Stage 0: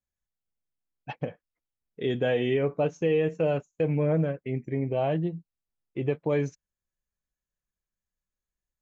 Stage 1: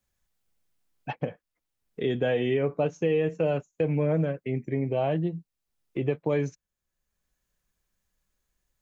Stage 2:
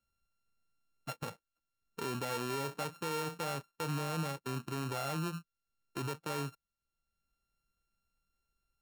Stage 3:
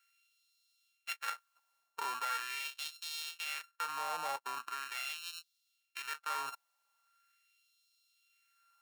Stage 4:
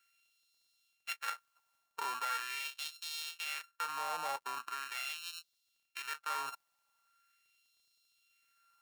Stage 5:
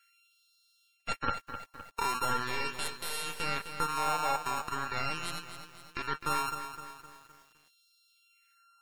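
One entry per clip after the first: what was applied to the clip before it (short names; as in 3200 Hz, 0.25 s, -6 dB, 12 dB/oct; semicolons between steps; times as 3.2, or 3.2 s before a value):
three-band squash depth 40%
sample sorter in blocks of 32 samples; limiter -23.5 dBFS, peak gain reduction 9.5 dB; gain -5.5 dB
reverse; compressor 6:1, threshold -47 dBFS, peak gain reduction 14 dB; reverse; LFO high-pass sine 0.41 Hz 820–3800 Hz; gain +11.5 dB
crackle 32/s -67 dBFS
tracing distortion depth 0.42 ms; spectral gate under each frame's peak -25 dB strong; lo-fi delay 0.257 s, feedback 55%, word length 10-bit, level -9.5 dB; gain +7.5 dB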